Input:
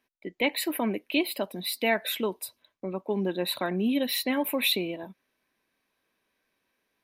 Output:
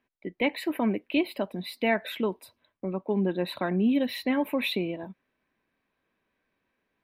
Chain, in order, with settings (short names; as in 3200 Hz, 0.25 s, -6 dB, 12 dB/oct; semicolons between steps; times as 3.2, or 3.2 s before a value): tone controls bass +5 dB, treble -15 dB